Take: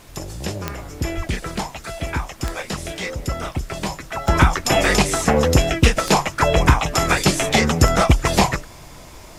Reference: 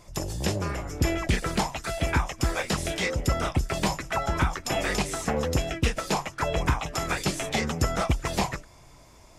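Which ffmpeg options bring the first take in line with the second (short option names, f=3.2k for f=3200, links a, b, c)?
-filter_complex "[0:a]adeclick=t=4,asplit=3[a][b][c];[a]afade=t=out:st=1.16:d=0.02[d];[b]highpass=f=140:w=0.5412,highpass=f=140:w=1.3066,afade=t=in:st=1.16:d=0.02,afade=t=out:st=1.28:d=0.02[e];[c]afade=t=in:st=1.28:d=0.02[f];[d][e][f]amix=inputs=3:normalize=0,agate=range=-21dB:threshold=-31dB,asetnsamples=n=441:p=0,asendcmd='4.28 volume volume -10.5dB',volume=0dB"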